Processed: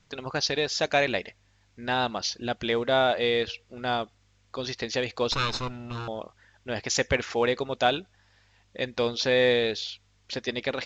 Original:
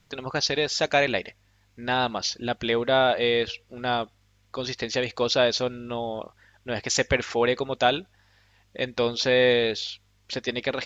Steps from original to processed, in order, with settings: 5.32–6.08 s: comb filter that takes the minimum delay 0.76 ms; trim -2 dB; A-law 128 kbps 16 kHz

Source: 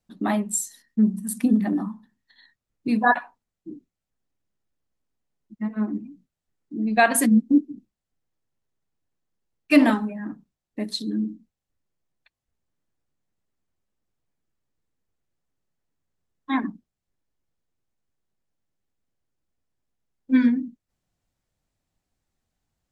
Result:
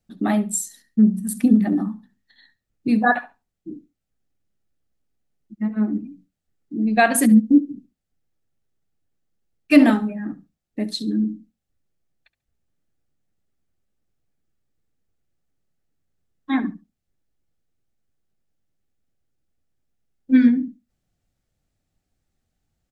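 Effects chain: bass shelf 330 Hz +4.5 dB; band-stop 1 kHz, Q 5.4; feedback delay 70 ms, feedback 20%, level -19 dB; trim +1 dB

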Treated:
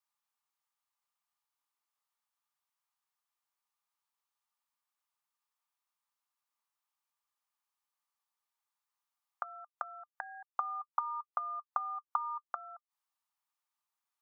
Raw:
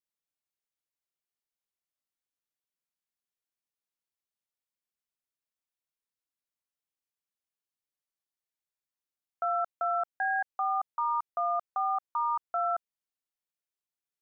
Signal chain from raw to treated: ladder high-pass 800 Hz, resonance 60%; inverted gate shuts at -35 dBFS, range -25 dB; small resonant body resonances 1.2 kHz, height 11 dB, ringing for 55 ms; trim +12 dB

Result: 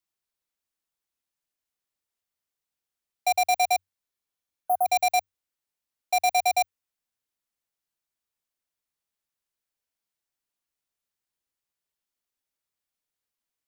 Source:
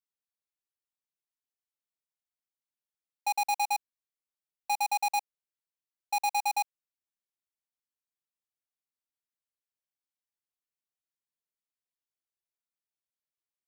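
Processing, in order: spectral replace 4.12–4.84 s, 1.6–9.8 kHz before; frequency shift -94 Hz; trim +6 dB

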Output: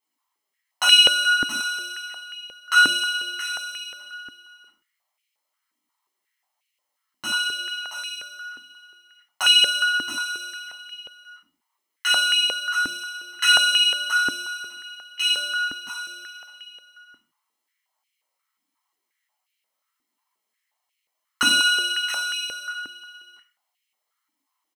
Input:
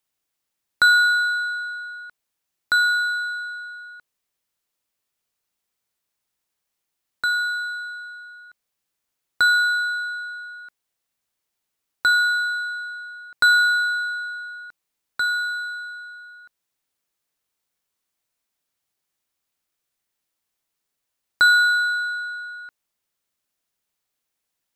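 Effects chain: comb filter that takes the minimum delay 0.98 ms; dynamic bell 8.8 kHz, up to +7 dB, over -44 dBFS, Q 1.4; on a send: delay 675 ms -8.5 dB; on the sum: flange 0.9 Hz, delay 2.5 ms, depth 3 ms, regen -32%; simulated room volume 380 m³, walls furnished, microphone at 5.2 m; step-sequenced high-pass 5.6 Hz 280–2500 Hz; trim -2.5 dB

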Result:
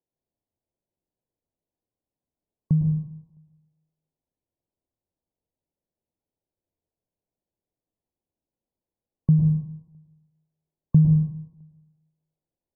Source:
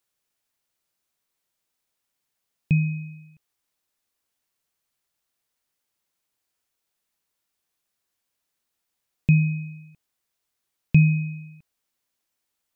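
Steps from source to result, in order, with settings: median filter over 41 samples; brick-wall FIR low-pass 1.1 kHz; reverberation RT60 0.80 s, pre-delay 98 ms, DRR 5 dB

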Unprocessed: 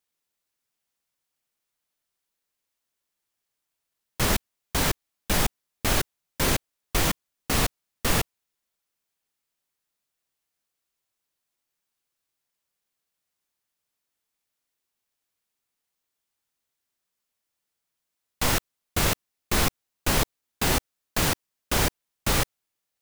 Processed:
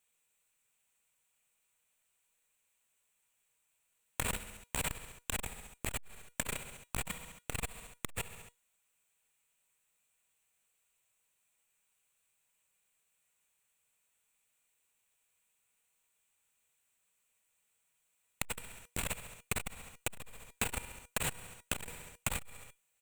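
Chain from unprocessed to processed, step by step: graphic EQ with 31 bands 315 Hz -11 dB, 2.5 kHz +8 dB, 5 kHz -12 dB, 8 kHz +11 dB; feedback delay 68 ms, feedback 50%, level -17 dB; dynamic bell 6.2 kHz, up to -7 dB, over -48 dBFS, Q 5.9; feedback comb 480 Hz, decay 0.18 s, harmonics all, mix 60%; compression 6:1, threshold -39 dBFS, peak gain reduction 16 dB; transformer saturation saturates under 570 Hz; trim +9 dB

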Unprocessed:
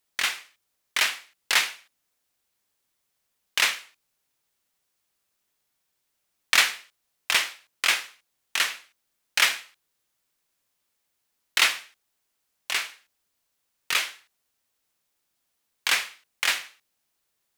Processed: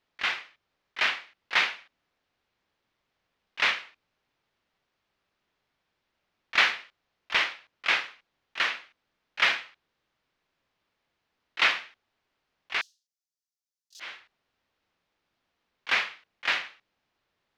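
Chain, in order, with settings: 12.81–14.00 s: inverse Chebyshev high-pass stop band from 2.4 kHz, stop band 50 dB; slow attack 123 ms; distance through air 250 m; trim +6.5 dB

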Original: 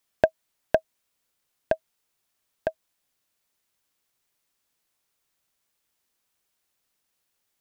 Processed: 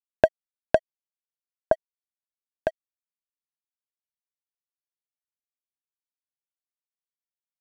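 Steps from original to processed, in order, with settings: 0.77–1.73 s: resonant high shelf 1.7 kHz -12.5 dB, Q 3; crossover distortion -47 dBFS; resampled via 32 kHz; trim +2 dB

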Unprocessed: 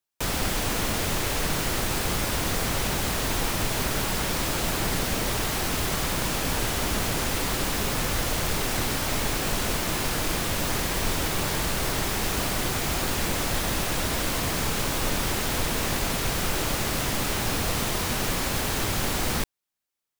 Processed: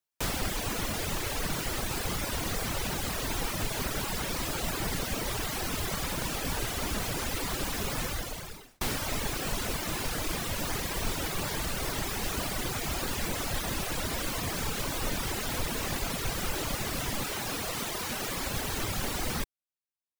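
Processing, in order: 8.04–8.81 s: fade out; reverb removal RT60 1.1 s; 17.25–18.36 s: bass shelf 120 Hz -11.5 dB; trim -3 dB

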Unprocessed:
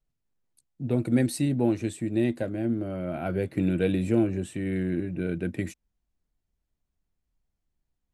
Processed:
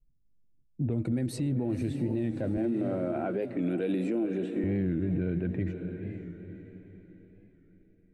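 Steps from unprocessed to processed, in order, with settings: level-controlled noise filter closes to 350 Hz, open at -21 dBFS; 2.57–4.64 s: high-pass 240 Hz 24 dB/octave; echo that smears into a reverb 518 ms, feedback 43%, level -13 dB; compression 2:1, threshold -28 dBFS, peak gain reduction 6.5 dB; tilt EQ -2 dB/octave; peak limiter -23.5 dBFS, peak gain reduction 9 dB; warped record 45 rpm, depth 100 cents; trim +1.5 dB

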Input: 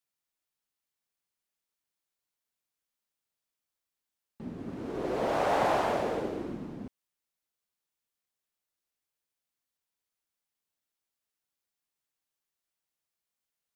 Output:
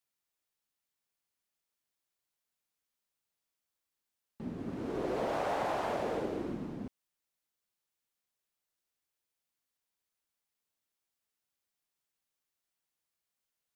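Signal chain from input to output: compression, threshold -30 dBFS, peak gain reduction 7.5 dB

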